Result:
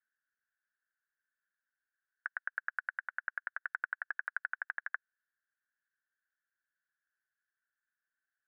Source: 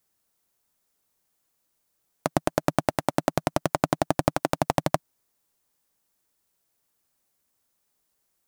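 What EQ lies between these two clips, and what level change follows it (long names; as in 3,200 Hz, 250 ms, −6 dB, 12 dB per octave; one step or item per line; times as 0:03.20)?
flat-topped band-pass 1,600 Hz, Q 5.5
+4.5 dB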